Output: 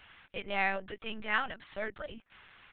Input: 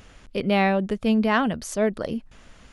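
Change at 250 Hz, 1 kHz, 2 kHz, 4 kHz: -23.5, -10.0, -4.5, -8.0 dB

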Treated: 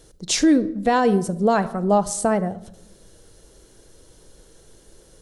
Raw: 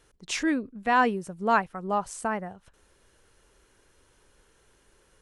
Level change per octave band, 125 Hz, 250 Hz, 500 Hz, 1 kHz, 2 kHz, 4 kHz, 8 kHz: +13.5, +10.5, +10.0, +3.0, -1.0, +9.0, +12.0 dB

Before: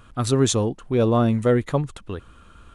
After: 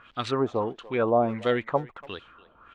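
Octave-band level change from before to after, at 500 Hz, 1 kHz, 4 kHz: -3.5, +0.5, -7.0 dB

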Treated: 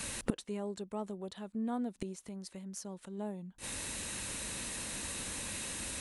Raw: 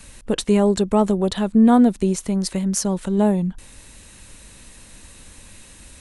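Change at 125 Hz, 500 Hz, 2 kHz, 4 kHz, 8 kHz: -20.5, -20.5, -6.5, -9.5, -7.5 dB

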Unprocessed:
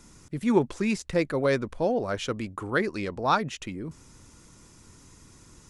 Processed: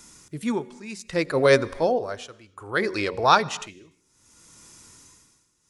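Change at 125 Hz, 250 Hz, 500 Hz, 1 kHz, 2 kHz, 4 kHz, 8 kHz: -0.5, -2.0, +4.0, +5.5, +5.0, +6.5, +4.0 dB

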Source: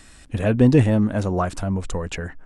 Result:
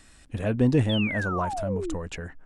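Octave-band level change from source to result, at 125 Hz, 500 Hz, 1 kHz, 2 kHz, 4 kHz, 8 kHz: -6.5, -5.5, -1.5, +1.0, +4.5, -6.5 dB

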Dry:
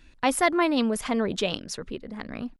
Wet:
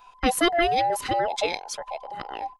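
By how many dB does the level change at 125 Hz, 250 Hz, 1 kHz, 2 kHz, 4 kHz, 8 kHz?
-2.0, -4.5, +5.0, +1.5, +3.0, +1.0 dB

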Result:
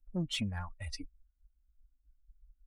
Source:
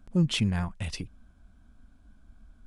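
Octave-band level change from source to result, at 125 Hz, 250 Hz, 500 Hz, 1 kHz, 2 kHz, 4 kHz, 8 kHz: -11.0, -10.5, -9.0, -6.0, -7.0, -6.0, -6.5 dB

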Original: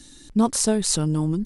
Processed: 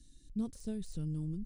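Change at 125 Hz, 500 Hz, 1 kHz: -13.0, -22.0, -31.0 dB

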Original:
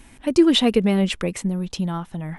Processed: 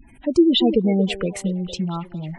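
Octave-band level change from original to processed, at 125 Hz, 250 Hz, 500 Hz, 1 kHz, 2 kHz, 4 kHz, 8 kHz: 0.0, 0.0, +0.5, -1.5, -4.5, -0.5, -3.5 dB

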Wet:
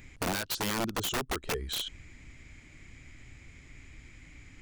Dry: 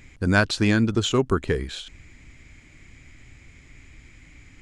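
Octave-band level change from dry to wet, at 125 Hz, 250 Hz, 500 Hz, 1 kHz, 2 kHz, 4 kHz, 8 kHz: -15.5, -14.5, -12.0, -5.5, -11.0, -4.0, -0.5 dB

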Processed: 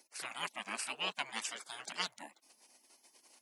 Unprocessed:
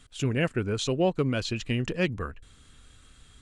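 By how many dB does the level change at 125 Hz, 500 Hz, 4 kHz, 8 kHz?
-34.5, -22.5, -4.0, -2.0 dB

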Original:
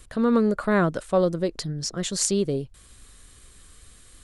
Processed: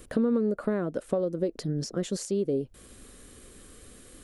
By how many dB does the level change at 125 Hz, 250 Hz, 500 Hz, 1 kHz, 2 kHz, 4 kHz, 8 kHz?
-5.0, -4.5, -4.0, -12.5, -12.0, -10.5, -12.0 dB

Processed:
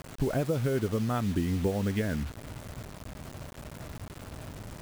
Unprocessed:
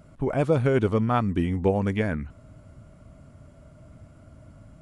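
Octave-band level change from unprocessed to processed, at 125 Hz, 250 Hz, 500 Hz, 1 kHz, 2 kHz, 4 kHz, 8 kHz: -4.0 dB, -4.5 dB, -6.5 dB, -8.5 dB, -5.5 dB, +1.0 dB, n/a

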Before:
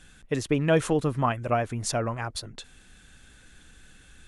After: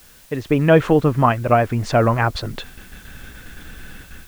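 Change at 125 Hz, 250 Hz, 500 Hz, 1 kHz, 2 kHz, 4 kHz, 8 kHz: +10.0, +9.0, +9.5, +10.5, +9.5, +4.5, -4.5 dB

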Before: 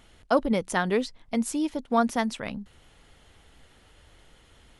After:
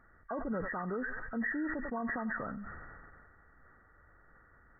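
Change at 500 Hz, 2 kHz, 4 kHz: -12.5 dB, -3.0 dB, under -40 dB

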